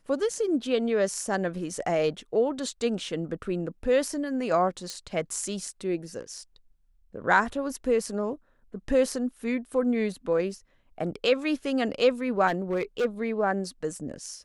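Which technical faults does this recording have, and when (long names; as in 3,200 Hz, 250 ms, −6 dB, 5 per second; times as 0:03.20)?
0:04.90: click −20 dBFS
0:12.47–0:13.06: clipping −22 dBFS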